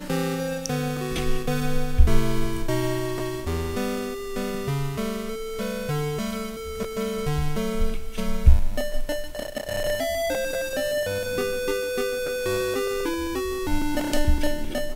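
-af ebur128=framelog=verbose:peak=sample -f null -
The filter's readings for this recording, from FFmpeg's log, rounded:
Integrated loudness:
  I:         -27.0 LUFS
  Threshold: -37.0 LUFS
Loudness range:
  LRA:         2.8 LU
  Threshold: -47.1 LUFS
  LRA low:   -28.9 LUFS
  LRA high:  -26.1 LUFS
Sample peak:
  Peak:       -1.8 dBFS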